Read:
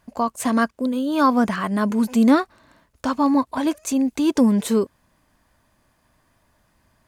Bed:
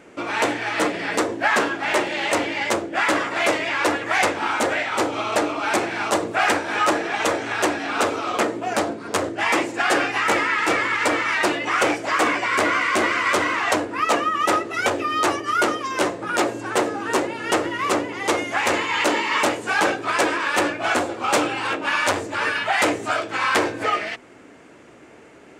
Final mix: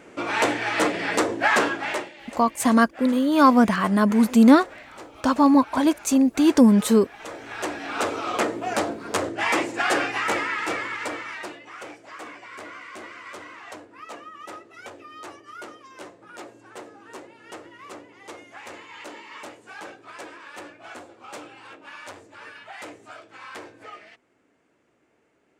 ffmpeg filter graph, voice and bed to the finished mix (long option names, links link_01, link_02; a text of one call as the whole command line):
ffmpeg -i stem1.wav -i stem2.wav -filter_complex "[0:a]adelay=2200,volume=2dB[link_01];[1:a]volume=17.5dB,afade=type=out:start_time=1.67:duration=0.46:silence=0.1,afade=type=in:start_time=7.17:duration=1.15:silence=0.125893,afade=type=out:start_time=9.83:duration=1.81:silence=0.133352[link_02];[link_01][link_02]amix=inputs=2:normalize=0" out.wav